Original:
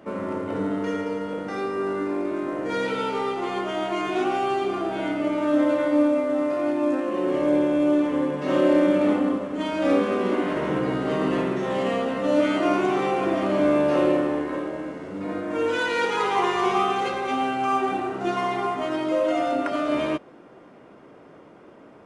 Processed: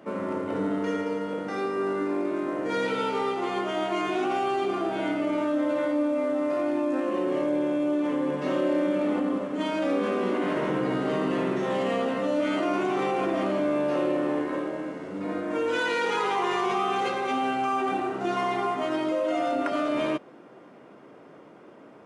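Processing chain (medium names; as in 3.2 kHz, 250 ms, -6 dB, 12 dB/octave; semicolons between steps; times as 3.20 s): high-pass 120 Hz; in parallel at 0 dB: compressor with a negative ratio -25 dBFS; on the sum: trim -8 dB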